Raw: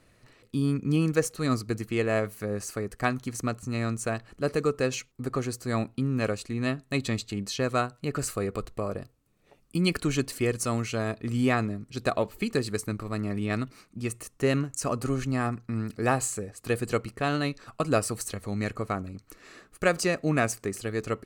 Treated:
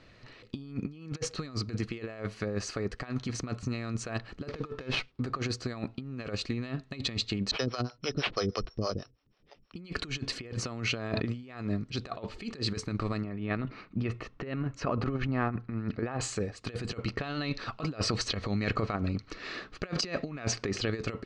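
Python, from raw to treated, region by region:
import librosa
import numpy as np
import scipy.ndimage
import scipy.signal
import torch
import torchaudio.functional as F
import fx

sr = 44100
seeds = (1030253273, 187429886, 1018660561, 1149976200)

y = fx.chain(x, sr, fx.high_shelf(hz=9100.0, db=-5.5),
    fx.running_max(window=5), at=(4.49, 5.23))
y = fx.chain(y, sr, fx.resample_bad(factor=8, down='none', up='zero_stuff'),
    fx.air_absorb(metres=330.0),
    fx.harmonic_tremolo(hz=6.2, depth_pct=100, crossover_hz=400.0), at=(7.51, 9.76))
y = fx.chain(y, sr, fx.highpass(hz=45.0, slope=12),
    fx.high_shelf(hz=4000.0, db=-6.0),
    fx.sustainer(db_per_s=74.0), at=(10.39, 11.43))
y = fx.chain(y, sr, fx.lowpass(hz=2400.0, slope=12),
    fx.over_compress(threshold_db=-30.0, ratio=-0.5), at=(13.24, 16.21))
y = fx.chain(y, sr, fx.cheby1_lowpass(hz=5300.0, order=2),
    fx.over_compress(threshold_db=-33.0, ratio=-0.5), at=(17.06, 20.9))
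y = scipy.signal.sosfilt(scipy.signal.butter(4, 4700.0, 'lowpass', fs=sr, output='sos'), y)
y = fx.high_shelf(y, sr, hz=3500.0, db=8.0)
y = fx.over_compress(y, sr, threshold_db=-32.0, ratio=-0.5)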